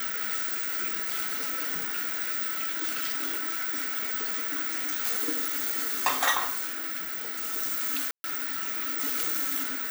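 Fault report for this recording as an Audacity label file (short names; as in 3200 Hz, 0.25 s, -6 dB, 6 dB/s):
7.040000	7.540000	clipped -28.5 dBFS
8.110000	8.240000	gap 0.13 s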